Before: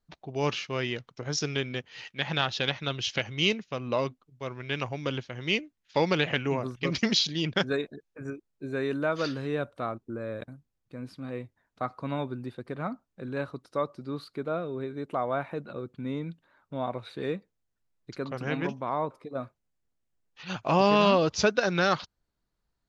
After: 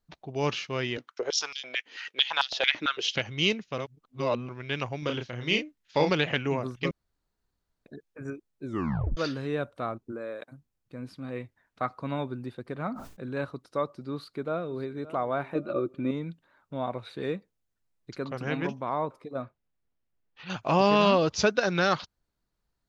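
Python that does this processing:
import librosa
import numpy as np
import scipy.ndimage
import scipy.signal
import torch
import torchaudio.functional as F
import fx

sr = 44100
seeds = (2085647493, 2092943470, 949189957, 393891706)

y = fx.filter_held_highpass(x, sr, hz=9.0, low_hz=290.0, high_hz=4700.0, at=(0.97, 3.15))
y = fx.doubler(y, sr, ms=33.0, db=-5, at=(4.99, 6.1))
y = fx.highpass(y, sr, hz=fx.line((10.11, 210.0), (10.51, 560.0)), slope=12, at=(10.11, 10.51), fade=0.02)
y = fx.peak_eq(y, sr, hz=2000.0, db=5.0, octaves=1.6, at=(11.36, 11.89))
y = fx.sustainer(y, sr, db_per_s=78.0, at=(12.82, 13.45))
y = fx.echo_throw(y, sr, start_s=14.13, length_s=0.9, ms=570, feedback_pct=20, wet_db=-16.5)
y = fx.small_body(y, sr, hz=(340.0, 570.0, 1200.0, 2400.0), ring_ms=45, db=15, at=(15.55, 16.11))
y = fx.lowpass(y, sr, hz=3600.0, slope=12, at=(19.42, 20.5))
y = fx.edit(y, sr, fx.reverse_span(start_s=3.78, length_s=0.71),
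    fx.room_tone_fill(start_s=6.91, length_s=0.95),
    fx.tape_stop(start_s=8.65, length_s=0.52), tone=tone)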